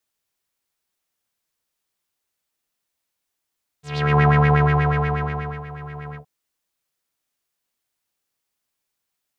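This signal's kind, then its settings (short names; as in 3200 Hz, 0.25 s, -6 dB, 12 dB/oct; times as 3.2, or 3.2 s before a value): synth patch with filter wobble D3, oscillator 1 square, oscillator 2 saw, interval -12 st, oscillator 2 level -3.5 dB, filter lowpass, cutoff 730 Hz, Q 4, filter envelope 3 oct, filter decay 0.29 s, filter sustain 30%, attack 0.369 s, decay 1.44 s, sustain -20 dB, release 0.10 s, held 2.32 s, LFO 8.3 Hz, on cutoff 0.7 oct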